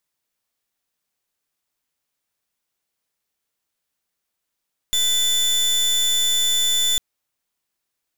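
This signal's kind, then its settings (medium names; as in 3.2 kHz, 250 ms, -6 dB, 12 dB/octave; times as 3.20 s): pulse 3.51 kHz, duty 29% -19 dBFS 2.05 s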